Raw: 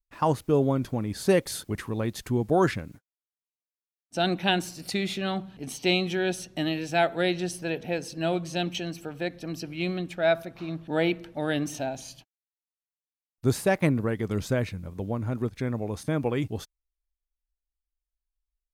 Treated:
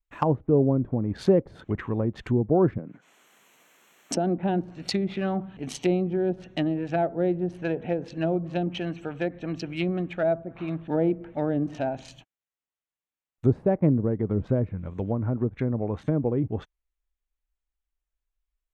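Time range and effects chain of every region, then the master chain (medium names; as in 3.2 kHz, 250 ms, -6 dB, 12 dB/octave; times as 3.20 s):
2.78–4.38 s: high-pass 160 Hz 24 dB/octave + band-stop 3.7 kHz, Q 15 + swell ahead of each attack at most 30 dB/s
whole clip: local Wiener filter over 9 samples; low-pass that closes with the level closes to 550 Hz, closed at -24 dBFS; treble shelf 2.6 kHz +8.5 dB; trim +3 dB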